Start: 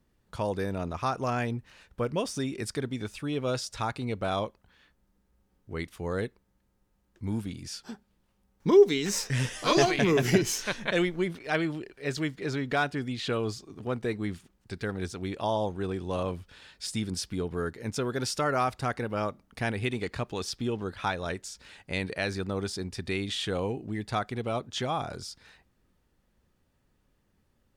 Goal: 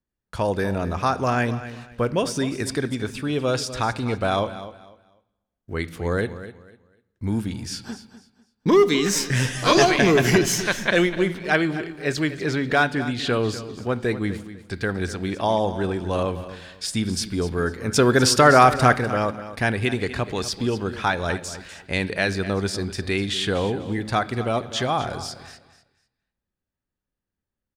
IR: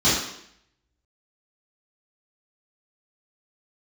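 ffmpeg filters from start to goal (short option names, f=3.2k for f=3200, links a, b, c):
-filter_complex "[0:a]acrossover=split=940[a][b];[a]volume=19.5dB,asoftclip=hard,volume=-19.5dB[c];[b]equalizer=f=1.6k:w=5.7:g=4.5[d];[c][d]amix=inputs=2:normalize=0,agate=range=-24dB:threshold=-55dB:ratio=16:detection=peak,asettb=1/sr,asplit=3[e][f][g];[e]atrim=end=17.934[h];[f]atrim=start=17.93:end=18.98,asetpts=PTS-STARTPTS,afade=t=in:d=0.004:c=qsin,afade=t=out:st=1.046:d=0.004:c=qsin,acontrast=68[i];[g]atrim=start=18.976[j];[h][i]acrossfade=d=0.004:c1=hsin:c2=qsin[k];[k][j]acrossfade=d=0.004:c1=qsin:c2=hsin,aecho=1:1:248|496|744:0.2|0.0499|0.0125,asplit=2[l][m];[1:a]atrim=start_sample=2205,asetrate=29547,aresample=44100[n];[m][n]afir=irnorm=-1:irlink=0,volume=-38dB[o];[l][o]amix=inputs=2:normalize=0,volume=7dB"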